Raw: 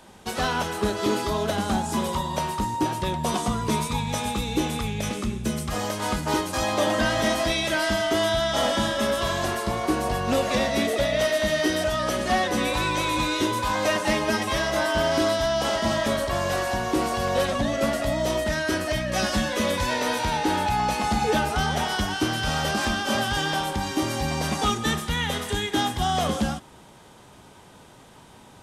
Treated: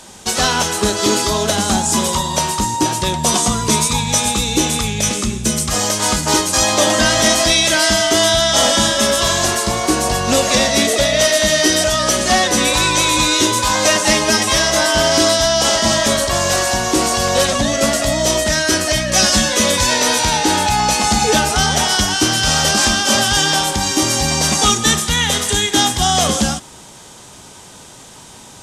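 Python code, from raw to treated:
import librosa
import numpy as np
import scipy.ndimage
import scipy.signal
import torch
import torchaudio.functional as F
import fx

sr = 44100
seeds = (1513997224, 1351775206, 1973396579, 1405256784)

y = fx.peak_eq(x, sr, hz=6900.0, db=13.5, octaves=1.6)
y = y * librosa.db_to_amplitude(7.0)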